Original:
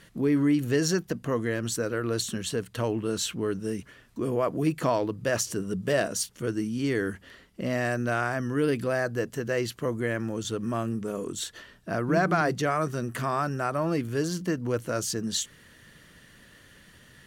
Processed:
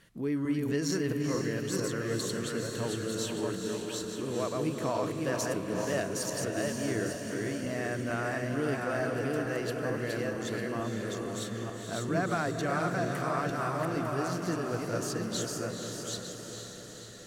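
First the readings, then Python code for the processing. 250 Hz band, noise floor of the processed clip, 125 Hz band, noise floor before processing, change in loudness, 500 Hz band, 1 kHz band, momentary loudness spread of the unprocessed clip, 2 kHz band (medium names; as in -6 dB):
-4.0 dB, -43 dBFS, -3.5 dB, -55 dBFS, -4.0 dB, -3.5 dB, -3.5 dB, 8 LU, -3.5 dB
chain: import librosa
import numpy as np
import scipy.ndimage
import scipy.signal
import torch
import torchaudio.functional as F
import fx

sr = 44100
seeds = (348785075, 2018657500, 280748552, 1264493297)

y = fx.reverse_delay_fb(x, sr, ms=450, feedback_pct=41, wet_db=-2)
y = fx.echo_diffused(y, sr, ms=474, feedback_pct=58, wet_db=-5.5)
y = y * 10.0 ** (-7.5 / 20.0)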